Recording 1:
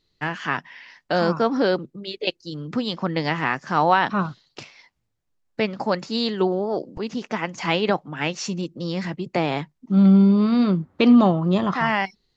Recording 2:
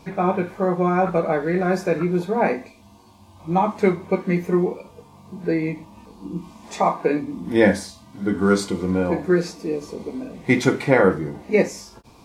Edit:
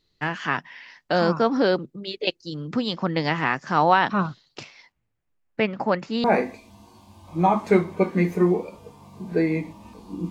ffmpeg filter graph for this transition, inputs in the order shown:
ffmpeg -i cue0.wav -i cue1.wav -filter_complex "[0:a]asettb=1/sr,asplit=3[link_01][link_02][link_03];[link_01]atrim=end=4.924[link_04];[link_02]atrim=start=4.92:end=6.24,asetpts=PTS-STARTPTS,afade=type=in:duration=0.004:curve=qsin,afade=type=out:start_time=1.316:duration=0.004:curve=qsin,highshelf=frequency=3300:width_type=q:width=1.5:gain=-7[link_05];[link_03]atrim=start=6.236[link_06];[link_04][link_05]acrossfade=duration=0.004:curve1=hsin:curve2=qsin[link_07];[link_07][link_06]acrossfade=duration=0.004:curve1=qsin:curve2=hsin,apad=whole_dur=10.3,atrim=end=10.3,atrim=end=6.242[link_08];[1:a]atrim=start=2.358:end=6.42[link_09];[link_08][link_09]acrossfade=duration=0.004:curve1=hsin:curve2=hsin" out.wav

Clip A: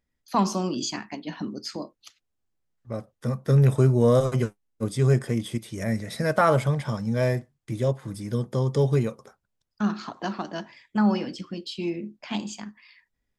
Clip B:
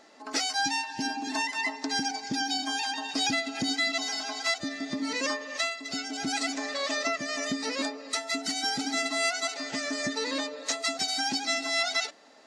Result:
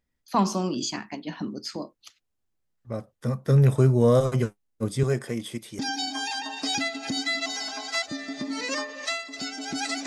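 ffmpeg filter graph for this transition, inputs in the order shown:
ffmpeg -i cue0.wav -i cue1.wav -filter_complex "[0:a]asettb=1/sr,asplit=3[link_01][link_02][link_03];[link_01]atrim=end=5.034[link_04];[link_02]atrim=start=5.03:end=5.79,asetpts=PTS-STARTPTS,afade=type=in:duration=0.004:curve=qsin,afade=type=out:start_time=0.756:duration=0.004:curve=qsin,highpass=frequency=300:poles=1[link_05];[link_03]atrim=start=5.786[link_06];[link_04][link_05]acrossfade=duration=0.004:curve1=hsin:curve2=qsin[link_07];[link_07][link_06]acrossfade=duration=0.004:curve1=qsin:curve2=hsin,apad=whole_dur=10.06,atrim=end=10.06,atrim=end=5.792[link_08];[1:a]atrim=start=2.308:end=6.58[link_09];[link_08][link_09]acrossfade=duration=0.004:curve1=hsin:curve2=hsin" out.wav

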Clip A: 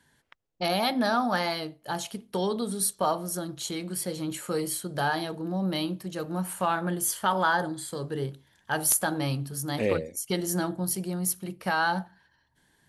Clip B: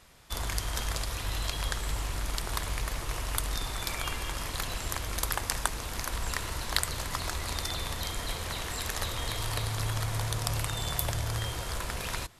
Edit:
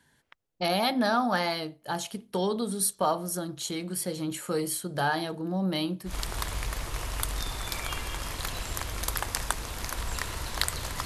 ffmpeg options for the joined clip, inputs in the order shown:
ffmpeg -i cue0.wav -i cue1.wav -filter_complex "[0:a]apad=whole_dur=11.05,atrim=end=11.05,atrim=end=6.16,asetpts=PTS-STARTPTS[link_01];[1:a]atrim=start=2.19:end=7.2,asetpts=PTS-STARTPTS[link_02];[link_01][link_02]acrossfade=duration=0.12:curve1=tri:curve2=tri" out.wav

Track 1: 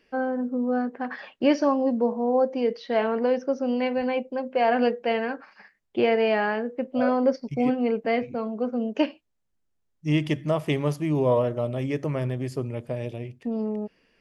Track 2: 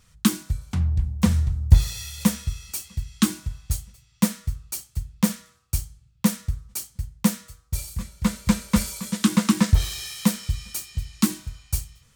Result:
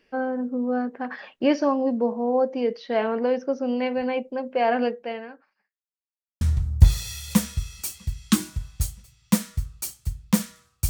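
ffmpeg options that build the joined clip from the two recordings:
ffmpeg -i cue0.wav -i cue1.wav -filter_complex "[0:a]apad=whole_dur=10.89,atrim=end=10.89,asplit=2[link_01][link_02];[link_01]atrim=end=5.89,asetpts=PTS-STARTPTS,afade=type=out:start_time=4.72:duration=1.17:curve=qua[link_03];[link_02]atrim=start=5.89:end=6.41,asetpts=PTS-STARTPTS,volume=0[link_04];[1:a]atrim=start=1.31:end=5.79,asetpts=PTS-STARTPTS,afade=type=in:duration=0.004:curve=hsin[link_05];[link_03][link_04][link_05]concat=n=3:v=0:a=1" out.wav

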